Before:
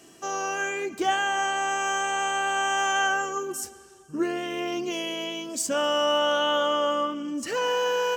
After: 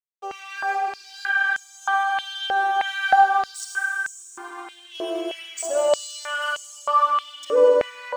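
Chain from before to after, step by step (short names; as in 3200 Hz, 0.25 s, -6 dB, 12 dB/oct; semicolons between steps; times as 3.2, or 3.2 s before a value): spectral contrast raised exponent 2.2; backlash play -31 dBFS; reverb RT60 4.7 s, pre-delay 30 ms, DRR -2 dB; stepped high-pass 3.2 Hz 490–6700 Hz; gain -1.5 dB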